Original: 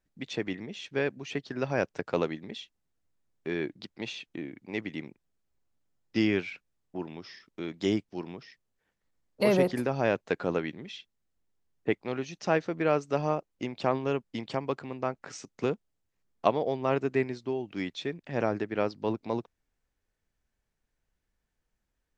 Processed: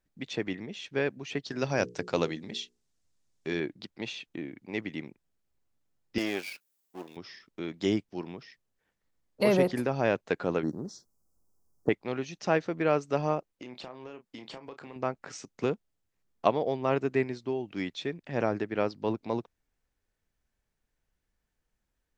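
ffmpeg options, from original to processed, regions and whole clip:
-filter_complex "[0:a]asettb=1/sr,asplit=3[a][b][c];[a]atrim=end=1.444[d];[b]atrim=start=1.44:end=3.6,asetpts=PTS-STARTPTS,afade=t=in:d=0.004:c=qsin,afade=t=out:st=2.156:d=0.004:c=qsin,lowpass=6.5k,bass=f=250:g=2,treble=f=4k:g=15,bandreject=f=60:t=h:w=6,bandreject=f=120:t=h:w=6,bandreject=f=180:t=h:w=6,bandreject=f=240:t=h:w=6,bandreject=f=300:t=h:w=6,bandreject=f=360:t=h:w=6,bandreject=f=420:t=h:w=6,bandreject=f=480:t=h:w=6[e];[c]atrim=start=3.596[f];[d][e]acrossfade=d=0.004:c1=hsin:c2=qsin[g];[g][f]acrossfade=d=0.004:c1=qsin:c2=hsin,asettb=1/sr,asplit=3[h][i][j];[h]atrim=end=6.184[k];[i]atrim=start=6.18:end=7.17,asetpts=PTS-STARTPTS,afade=t=in:d=0.004:c=qsin,afade=t=out:st=0.986:d=0.004:c=qsin,aeval=exprs='if(lt(val(0),0),0.251*val(0),val(0))':c=same,highpass=280,aemphasis=mode=production:type=75fm[l];[j]atrim=start=7.166[m];[k][l]acrossfade=d=0.004:c1=hsin:c2=qsin[n];[n][m]acrossfade=d=0.004:c1=qsin:c2=hsin,asettb=1/sr,asplit=3[o][p][q];[o]atrim=end=10.634[r];[p]atrim=start=10.63:end=11.89,asetpts=PTS-STARTPTS,afade=t=in:d=0.004:c=qsin,afade=t=out:st=1.256:d=0.004:c=qsin,highshelf=f=6.7k:g=6.5,acontrast=49,asuperstop=centerf=2600:order=8:qfactor=0.7[s];[q]atrim=start=11.886[t];[r][s]acrossfade=d=0.004:c1=hsin:c2=qsin[u];[u][t]acrossfade=d=0.004:c1=qsin:c2=hsin,asettb=1/sr,asplit=3[v][w][x];[v]atrim=end=13.534[y];[w]atrim=start=13.53:end=14.96,asetpts=PTS-STARTPTS,afade=t=in:d=0.004:c=qsin,afade=t=out:st=1.426:d=0.004:c=qsin,lowshelf=f=170:g=-12,acompressor=threshold=-39dB:ratio=10:attack=3.2:release=140:knee=1:detection=peak,asplit=2[z][aa];[aa]adelay=32,volume=-10dB[ab];[z][ab]amix=inputs=2:normalize=0,atrim=end_sample=63063[ac];[x]atrim=start=14.956[ad];[y][ac]acrossfade=d=0.004:c1=hsin:c2=qsin[ae];[ae][ad]acrossfade=d=0.004:c1=qsin:c2=hsin"

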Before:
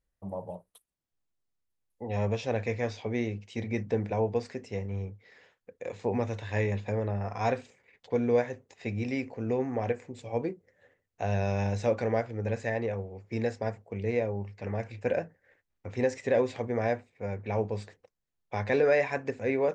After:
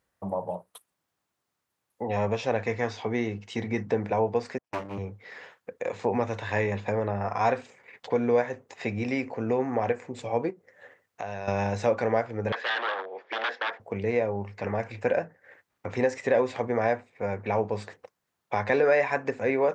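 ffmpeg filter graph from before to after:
-filter_complex "[0:a]asettb=1/sr,asplit=3[a][b][c];[a]atrim=end=2.634[d];[b]atrim=start=2.63:end=3.9,asetpts=PTS-STARTPTS,afade=t=in:d=0.004:c=qsin,afade=t=out:st=1.266:d=0.004:c=qsin,equalizer=f=570:w=7.1:g=-8.5,bandreject=f=2.4k:w=12[e];[c]atrim=start=3.896[f];[d][e]acrossfade=d=0.004:c1=hsin:c2=qsin[g];[g][f]acrossfade=d=0.004:c1=qsin:c2=hsin,asettb=1/sr,asplit=3[h][i][j];[h]atrim=end=4.584[k];[i]atrim=start=4.58:end=4.98,asetpts=PTS-STARTPTS,afade=t=in:d=0.004:c=qsin,afade=t=out:st=0.396:d=0.004:c=qsin,agate=range=-44dB:threshold=-36dB:ratio=16:release=100:detection=peak,aeval=exprs='abs(val(0))':c=same[l];[j]atrim=start=4.976[m];[k][l]acrossfade=d=0.004:c1=hsin:c2=qsin[n];[n][m]acrossfade=d=0.004:c1=qsin:c2=hsin,asettb=1/sr,asplit=3[o][p][q];[o]atrim=end=10.504[r];[p]atrim=start=10.5:end=11.48,asetpts=PTS-STARTPTS,afade=t=in:d=0.004:c=qsin,afade=t=out:st=0.976:d=0.004:c=qsin,lowshelf=f=410:g=-5.5,acompressor=threshold=-48dB:ratio=2:attack=3.2:release=140:knee=1:detection=peak[s];[q]atrim=start=11.476[t];[r][s]acrossfade=d=0.004:c1=hsin:c2=qsin[u];[u][t]acrossfade=d=0.004:c1=qsin:c2=hsin,asettb=1/sr,asplit=3[v][w][x];[v]atrim=end=12.524[y];[w]atrim=start=12.52:end=13.8,asetpts=PTS-STARTPTS,afade=t=in:d=0.004:c=qsin,afade=t=out:st=1.276:d=0.004:c=qsin,aeval=exprs='0.0251*(abs(mod(val(0)/0.0251+3,4)-2)-1)':c=same,highpass=f=380:w=0.5412,highpass=f=380:w=1.3066,equalizer=f=410:t=q:w=4:g=-3,equalizer=f=1.7k:t=q:w=4:g=9,equalizer=f=3.4k:t=q:w=4:g=10,lowpass=f=4.6k:w=0.5412,lowpass=f=4.6k:w=1.3066[z];[x]atrim=start=13.796[aa];[y][z]acrossfade=d=0.004:c1=hsin:c2=qsin[ab];[ab][aa]acrossfade=d=0.004:c1=qsin:c2=hsin,equalizer=f=1.1k:w=0.76:g=7.5,acompressor=threshold=-46dB:ratio=1.5,highpass=110,volume=9dB"

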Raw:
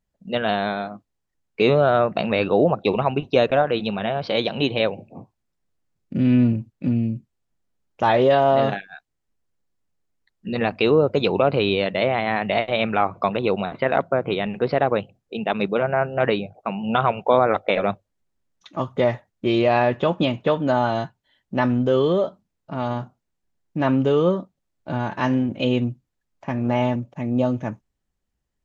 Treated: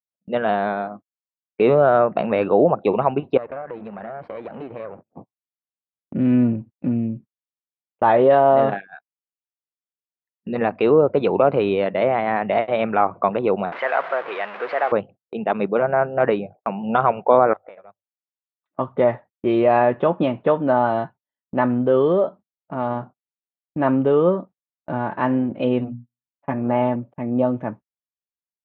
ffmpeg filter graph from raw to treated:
-filter_complex "[0:a]asettb=1/sr,asplit=3[a][b][c];[a]atrim=end=3.374[d];[b]atrim=start=3.37:end=5.13,asetpts=PTS-STARTPTS,afade=t=in:d=0.004:c=qsin,afade=t=out:st=1.756:d=0.004:c=qsin,aeval=exprs='if(lt(val(0),0),0.251*val(0),val(0))':c=same,highshelf=f=2.6k:t=q:w=1.5:g=-8.5,acompressor=threshold=-30dB:ratio=4:attack=3.2:release=140:knee=1:detection=peak[e];[c]atrim=start=5.126[f];[d][e]acrossfade=d=0.004:c1=hsin:c2=qsin[g];[g][f]acrossfade=d=0.004:c1=qsin:c2=hsin,asettb=1/sr,asplit=3[h][i][j];[h]atrim=end=13.724[k];[i]atrim=start=13.72:end=14.92,asetpts=PTS-STARTPTS,afade=t=in:d=0.004:c=qsin,afade=t=out:st=1.196:d=0.004:c=qsin,aeval=exprs='val(0)+0.5*0.0794*sgn(val(0))':c=same,highpass=540,lowpass=2.4k,tiltshelf=f=1.2k:g=-8.5[l];[j]atrim=start=14.916[m];[k][l]acrossfade=d=0.004:c1=hsin:c2=qsin[n];[n][m]acrossfade=d=0.004:c1=qsin:c2=hsin,asettb=1/sr,asplit=3[o][p][q];[o]atrim=end=17.534[r];[p]atrim=start=17.53:end=18.79,asetpts=PTS-STARTPTS,afade=t=in:d=0.004:c=qsin,afade=t=out:st=1.256:d=0.004:c=qsin,lowpass=f=2.4k:p=1,equalizer=f=250:t=o:w=1.4:g=-12,acompressor=threshold=-42dB:ratio=4:attack=3.2:release=140:knee=1:detection=peak[s];[q]atrim=start=18.786[t];[r][s]acrossfade=d=0.004:c1=hsin:c2=qsin[u];[u][t]acrossfade=d=0.004:c1=qsin:c2=hsin,asettb=1/sr,asplit=3[v][w][x];[v]atrim=end=25.794[y];[w]atrim=start=25.79:end=26.54,asetpts=PTS-STARTPTS,afade=t=in:d=0.004:c=qsin,afade=t=out:st=0.746:d=0.004:c=qsin,bandreject=f=60:t=h:w=6,bandreject=f=120:t=h:w=6,bandreject=f=180:t=h:w=6,bandreject=f=240:t=h:w=6,aecho=1:1:7:0.57,atrim=end_sample=33075[z];[x]atrim=start=26.536[aa];[y][z]acrossfade=d=0.004:c1=hsin:c2=qsin[ab];[ab][aa]acrossfade=d=0.004:c1=qsin:c2=hsin,highpass=f=250:p=1,agate=range=-29dB:threshold=-41dB:ratio=16:detection=peak,lowpass=1.5k,volume=3.5dB"

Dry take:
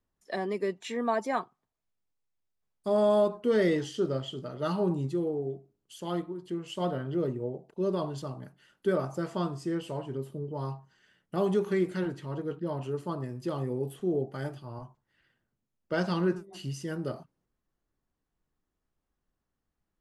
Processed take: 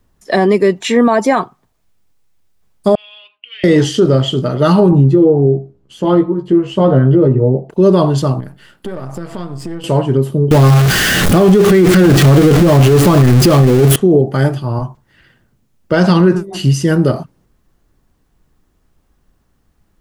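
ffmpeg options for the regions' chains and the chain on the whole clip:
-filter_complex "[0:a]asettb=1/sr,asplit=3[a][b][c];[a]atrim=end=2.954[d];[b]atrim=start=2.95:end=3.64,asetpts=PTS-STARTPTS,afade=t=in:d=0.004:c=qsin,afade=t=out:st=0.686:d=0.004:c=qsin,aeval=exprs='val(0)+0.01*(sin(2*PI*60*n/s)+sin(2*PI*2*60*n/s)/2+sin(2*PI*3*60*n/s)/3+sin(2*PI*4*60*n/s)/4+sin(2*PI*5*60*n/s)/5)':c=same,asuperpass=centerf=2700:order=4:qfactor=4.5[e];[c]atrim=start=3.636[f];[d][e]acrossfade=d=0.004:c1=hsin:c2=qsin[g];[g][f]acrossfade=d=0.004:c1=qsin:c2=hsin,asettb=1/sr,asplit=3[h][i][j];[h]atrim=end=4.914[k];[i]atrim=start=4.91:end=7.7,asetpts=PTS-STARTPTS,afade=t=in:d=0.004:c=qsin,afade=t=out:st=2.786:d=0.004:c=qsin,lowpass=f=1.1k:p=1,asplit=2[l][m];[m]adelay=15,volume=-4.5dB[n];[l][n]amix=inputs=2:normalize=0,atrim=end_sample=123039[o];[j]atrim=start=7.696[p];[k][o]acrossfade=d=0.004:c1=hsin:c2=qsin[q];[q][p]acrossfade=d=0.004:c1=qsin:c2=hsin,asettb=1/sr,asplit=3[r][s][t];[r]atrim=end=8.404[u];[s]atrim=start=8.4:end=9.84,asetpts=PTS-STARTPTS,afade=t=in:d=0.004:c=qsin,afade=t=out:st=1.436:d=0.004:c=qsin,aeval=exprs='if(lt(val(0),0),0.447*val(0),val(0))':c=same,equalizer=f=6.2k:w=5.8:g=-7,acompressor=threshold=-46dB:ratio=4:attack=3.2:release=140:knee=1:detection=peak[v];[t]atrim=start=9.836[w];[u][v]acrossfade=d=0.004:c1=hsin:c2=qsin[x];[x][w]acrossfade=d=0.004:c1=qsin:c2=hsin,asettb=1/sr,asplit=3[y][z][aa];[y]atrim=end=10.514[ab];[z]atrim=start=10.51:end=13.96,asetpts=PTS-STARTPTS,afade=t=in:d=0.004:c=qsin,afade=t=out:st=3.446:d=0.004:c=qsin,aeval=exprs='val(0)+0.5*0.0211*sgn(val(0))':c=same,bandreject=f=930:w=8.3,acontrast=37[ac];[aa]atrim=start=13.956[ad];[ab][ac]acrossfade=d=0.004:c1=hsin:c2=qsin[ae];[ae][ad]acrossfade=d=0.004:c1=qsin:c2=hsin,lowshelf=f=210:g=6,alimiter=level_in=21.5dB:limit=-1dB:release=50:level=0:latency=1,volume=-1dB"

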